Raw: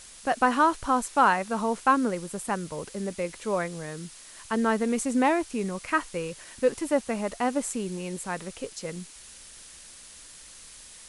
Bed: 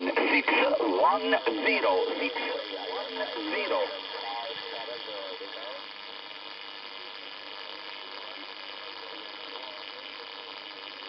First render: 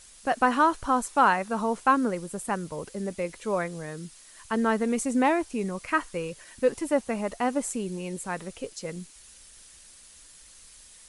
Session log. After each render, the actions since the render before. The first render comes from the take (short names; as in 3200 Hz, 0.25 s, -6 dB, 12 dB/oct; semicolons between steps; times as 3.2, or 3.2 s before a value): denoiser 6 dB, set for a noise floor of -48 dBFS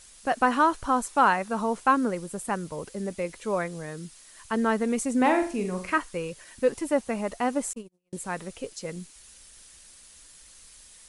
5.17–5.98 flutter echo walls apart 7.5 m, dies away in 0.39 s; 7.73–8.13 gate -29 dBFS, range -49 dB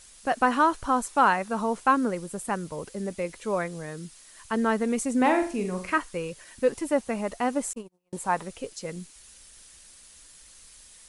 7.77–8.43 bell 890 Hz +11 dB 0.99 oct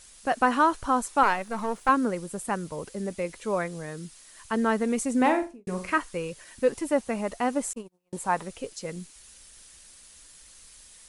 1.23–1.89 half-wave gain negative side -7 dB; 5.25–5.67 studio fade out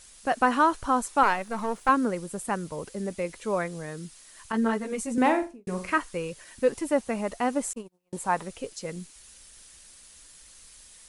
4.52–5.18 ensemble effect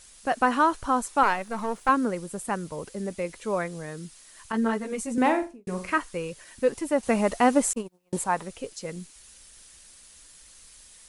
7.03–8.24 gain +6.5 dB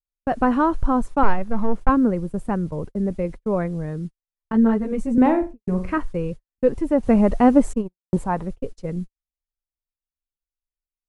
gate -38 dBFS, range -54 dB; tilt -4.5 dB/oct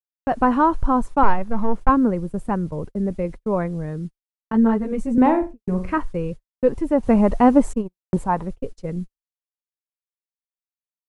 expander -38 dBFS; dynamic EQ 960 Hz, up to +5 dB, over -35 dBFS, Q 2.9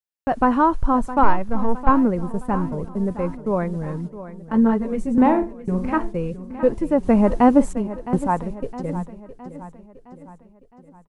feedback echo 0.663 s, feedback 51%, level -14 dB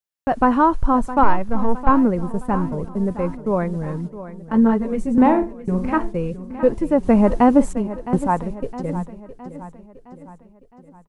gain +1.5 dB; limiter -3 dBFS, peak gain reduction 2 dB